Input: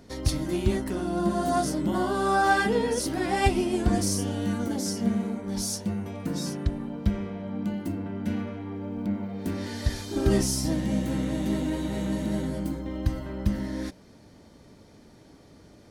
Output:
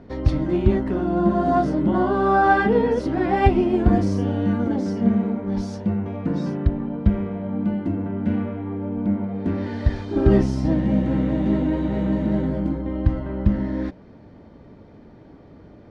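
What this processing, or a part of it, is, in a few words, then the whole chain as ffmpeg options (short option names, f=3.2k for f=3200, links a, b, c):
phone in a pocket: -af "lowpass=3.1k,highshelf=f=2.2k:g=-11,volume=7dB"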